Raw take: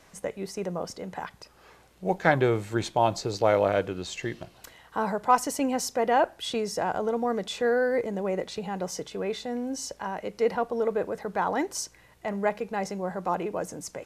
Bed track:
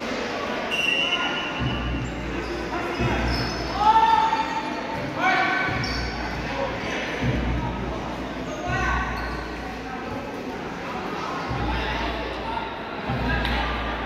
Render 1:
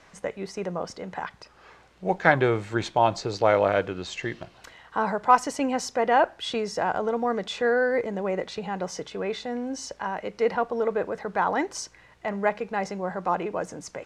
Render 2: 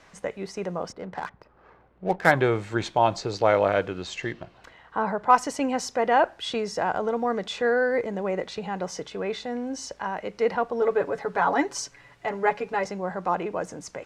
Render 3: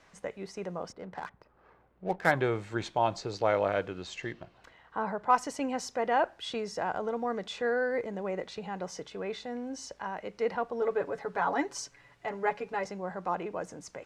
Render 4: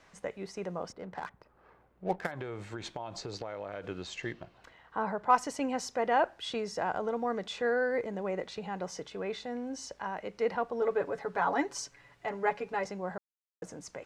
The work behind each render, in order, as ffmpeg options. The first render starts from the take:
ffmpeg -i in.wav -af "lowpass=6800,equalizer=frequency=1500:width_type=o:width=2:gain=4.5" out.wav
ffmpeg -i in.wav -filter_complex "[0:a]asplit=3[link_01][link_02][link_03];[link_01]afade=type=out:start_time=0.91:duration=0.02[link_04];[link_02]adynamicsmooth=sensitivity=6.5:basefreq=1100,afade=type=in:start_time=0.91:duration=0.02,afade=type=out:start_time=2.3:duration=0.02[link_05];[link_03]afade=type=in:start_time=2.3:duration=0.02[link_06];[link_04][link_05][link_06]amix=inputs=3:normalize=0,asettb=1/sr,asplit=3[link_07][link_08][link_09];[link_07]atrim=end=4.324[link_10];[link_08]atrim=start=4.32:end=5.3,asetpts=PTS-STARTPTS,afade=type=in:duration=0.004:curve=qsin,afade=type=out:start_time=0.976:duration=0.004:curve=qsin,highshelf=frequency=3900:gain=-12[link_11];[link_09]atrim=start=5.296[link_12];[link_10][link_11]acrossfade=duration=0.004:curve1=hsin:curve2=qsin[link_13];[link_13][link_12]acrossfade=duration=0.004:curve1=qsin:curve2=hsin,asettb=1/sr,asplit=3[link_14][link_15][link_16];[link_14]atrim=end=10.814[link_17];[link_15]atrim=start=10.81:end=12.85,asetpts=PTS-STARTPTS,afade=type=in:duration=0.004:curve=qsin,afade=type=out:start_time=2.036:duration=0.004:curve=qsin,aecho=1:1:7.1:0.78,atrim=end_sample=89964[link_18];[link_16]atrim=start=12.846[link_19];[link_17][link_18]acrossfade=duration=0.004:curve1=hsin:curve2=qsin[link_20];[link_20][link_19]acrossfade=duration=0.004:curve1=qsin:curve2=hsin" out.wav
ffmpeg -i in.wav -af "volume=-6.5dB" out.wav
ffmpeg -i in.wav -filter_complex "[0:a]asplit=3[link_01][link_02][link_03];[link_01]afade=type=out:start_time=2.25:duration=0.02[link_04];[link_02]acompressor=threshold=-34dB:ratio=16:attack=3.2:release=140:knee=1:detection=peak,afade=type=in:start_time=2.25:duration=0.02,afade=type=out:start_time=3.83:duration=0.02[link_05];[link_03]afade=type=in:start_time=3.83:duration=0.02[link_06];[link_04][link_05][link_06]amix=inputs=3:normalize=0,asplit=3[link_07][link_08][link_09];[link_07]atrim=end=13.18,asetpts=PTS-STARTPTS,afade=type=out:start_time=13.176:duration=0.004:curve=hsin[link_10];[link_08]atrim=start=13.18:end=13.62,asetpts=PTS-STARTPTS,volume=0[link_11];[link_09]atrim=start=13.62,asetpts=PTS-STARTPTS,afade=type=in:duration=0.004:curve=hsin[link_12];[link_10][link_11][link_12]concat=n=3:v=0:a=1" out.wav

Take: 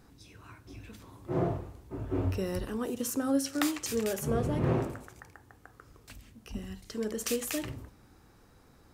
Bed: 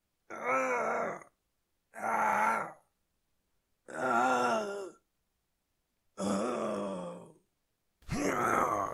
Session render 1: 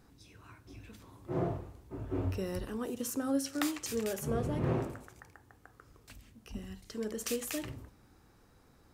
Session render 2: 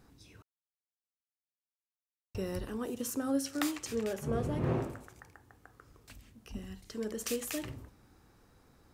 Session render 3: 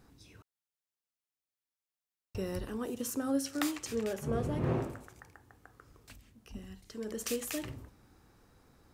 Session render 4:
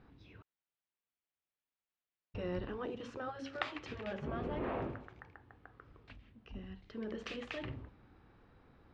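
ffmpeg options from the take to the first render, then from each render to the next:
ffmpeg -i in.wav -af "volume=-3.5dB" out.wav
ffmpeg -i in.wav -filter_complex "[0:a]asettb=1/sr,asplit=3[link_01][link_02][link_03];[link_01]atrim=end=0.424[link_04];[link_02]atrim=start=0.42:end=2.35,asetpts=PTS-STARTPTS,afade=type=in:duration=0.004:curve=qsin,afade=type=out:start_time=1.926:duration=0.004:curve=qsin,acrusher=bits=2:mix=0:aa=0.5[link_05];[link_03]atrim=start=2.346[link_06];[link_04][link_05]acrossfade=duration=0.004:curve1=hsin:curve2=qsin[link_07];[link_07][link_06]acrossfade=duration=0.004:curve1=qsin:curve2=hsin,asettb=1/sr,asplit=3[link_08][link_09][link_10];[link_08]atrim=end=3.854[link_11];[link_09]atrim=start=3.85:end=4.33,asetpts=PTS-STARTPTS,afade=type=in:duration=0.004:curve=qsin,afade=type=out:start_time=0.476:duration=0.004:curve=qsin,aemphasis=mode=reproduction:type=cd[link_12];[link_10]atrim=start=4.326[link_13];[link_11][link_12]acrossfade=duration=0.004:curve1=hsin:curve2=qsin[link_14];[link_14][link_13]acrossfade=duration=0.004:curve1=qsin:curve2=hsin" out.wav
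ffmpeg -i in.wav -filter_complex "[0:a]asplit=3[link_01][link_02][link_03];[link_01]atrim=end=6.162[link_04];[link_02]atrim=start=6.158:end=7.082,asetpts=PTS-STARTPTS,volume=-3dB[link_05];[link_03]atrim=start=7.078[link_06];[link_04][link_05]acrossfade=duration=0.004:curve1=hsin:curve2=hsin[link_07];[link_07][link_06]acrossfade=duration=0.004:curve1=hsin:curve2=hsin" out.wav
ffmpeg -i in.wav -af "afftfilt=real='re*lt(hypot(re,im),0.126)':imag='im*lt(hypot(re,im),0.126)':win_size=1024:overlap=0.75,lowpass=frequency=3400:width=0.5412,lowpass=frequency=3400:width=1.3066" out.wav

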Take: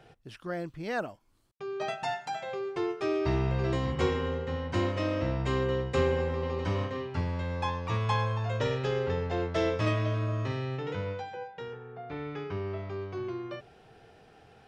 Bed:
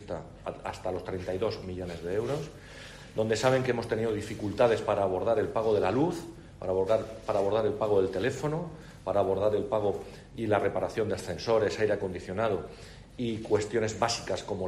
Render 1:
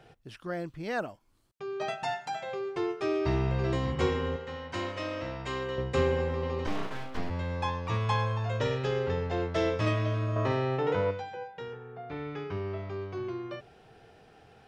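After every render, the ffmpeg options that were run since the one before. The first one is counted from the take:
ffmpeg -i in.wav -filter_complex "[0:a]asettb=1/sr,asplit=3[link_01][link_02][link_03];[link_01]atrim=end=4.364[link_04];[link_02]atrim=start=4.36:end=5.78,asetpts=PTS-STARTPTS,afade=type=in:duration=0.004:curve=qsin,afade=type=out:start_time=1.416:duration=0.004:curve=qsin,lowshelf=frequency=430:gain=-11[link_05];[link_03]atrim=start=5.776[link_06];[link_04][link_05]acrossfade=duration=0.004:curve1=hsin:curve2=qsin[link_07];[link_07][link_06]acrossfade=duration=0.004:curve1=qsin:curve2=hsin,asplit=3[link_08][link_09][link_10];[link_08]afade=type=out:start_time=6.66:duration=0.02[link_11];[link_09]aeval=exprs='abs(val(0))':channel_layout=same,afade=type=in:start_time=6.66:duration=0.02,afade=type=out:start_time=7.29:duration=0.02[link_12];[link_10]afade=type=in:start_time=7.29:duration=0.02[link_13];[link_11][link_12][link_13]amix=inputs=3:normalize=0,asettb=1/sr,asplit=3[link_14][link_15][link_16];[link_14]atrim=end=10.364[link_17];[link_15]atrim=start=10.36:end=11.11,asetpts=PTS-STARTPTS,afade=type=in:duration=0.004:curve=qsin,afade=type=out:start_time=0.746:duration=0.004:curve=qsin,equalizer=frequency=710:width_type=o:width=2.4:gain=10.5[link_18];[link_16]atrim=start=11.106[link_19];[link_17][link_18]acrossfade=duration=0.004:curve1=hsin:curve2=qsin[link_20];[link_20][link_19]acrossfade=duration=0.004:curve1=qsin:curve2=hsin" out.wav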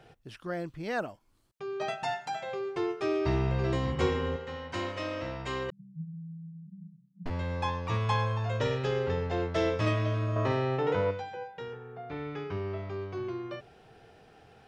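ffmpeg -i in.wav -filter_complex "[0:a]asettb=1/sr,asplit=3[link_01][link_02][link_03];[link_01]atrim=end=5.704[link_04];[link_02]atrim=start=5.7:end=7.26,asetpts=PTS-STARTPTS,afade=type=in:duration=0.004:curve=qsin,afade=type=out:start_time=1.556:duration=0.004:curve=qsin,asuperpass=centerf=170:order=8:qfactor=3.8[link_05];[link_03]atrim=start=7.256[link_06];[link_04][link_05]acrossfade=duration=0.004:curve1=hsin:curve2=qsin[link_07];[link_07][link_06]acrossfade=duration=0.004:curve1=qsin:curve2=hsin" out.wav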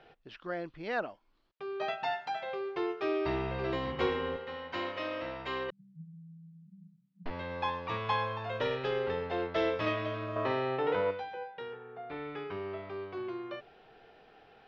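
ffmpeg -i in.wav -af "lowpass=frequency=4300:width=0.5412,lowpass=frequency=4300:width=1.3066,equalizer=frequency=98:width_type=o:width=2:gain=-13.5" out.wav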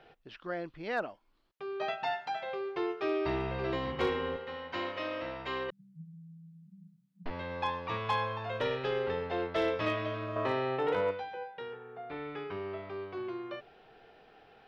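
ffmpeg -i in.wav -af "asoftclip=type=hard:threshold=-22.5dB" out.wav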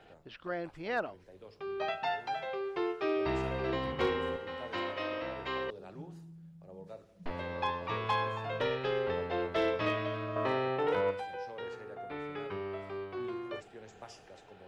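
ffmpeg -i in.wav -i bed.wav -filter_complex "[1:a]volume=-22.5dB[link_01];[0:a][link_01]amix=inputs=2:normalize=0" out.wav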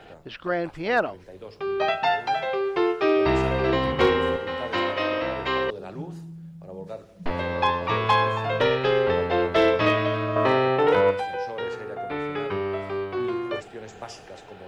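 ffmpeg -i in.wav -af "volume=11dB" out.wav

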